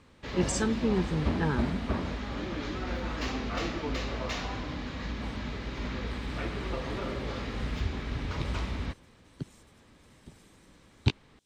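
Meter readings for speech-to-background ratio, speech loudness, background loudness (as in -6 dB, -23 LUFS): 2.0 dB, -32.5 LUFS, -34.5 LUFS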